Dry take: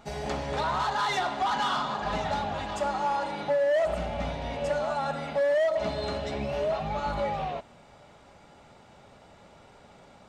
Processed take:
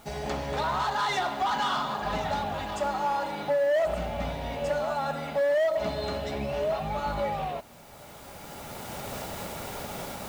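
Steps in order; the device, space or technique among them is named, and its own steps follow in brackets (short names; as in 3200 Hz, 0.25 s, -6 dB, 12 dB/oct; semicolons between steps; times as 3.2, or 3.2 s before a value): cheap recorder with automatic gain (white noise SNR 30 dB; recorder AGC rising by 11 dB/s)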